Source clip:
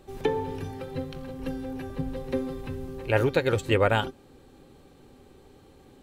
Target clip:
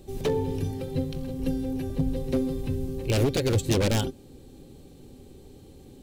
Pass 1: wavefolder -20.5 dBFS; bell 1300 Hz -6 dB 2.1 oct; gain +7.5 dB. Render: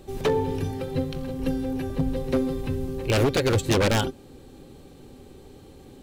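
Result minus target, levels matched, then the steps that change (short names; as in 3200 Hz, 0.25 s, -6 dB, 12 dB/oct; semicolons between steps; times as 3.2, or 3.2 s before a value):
1000 Hz band +5.0 dB
change: bell 1300 Hz -15.5 dB 2.1 oct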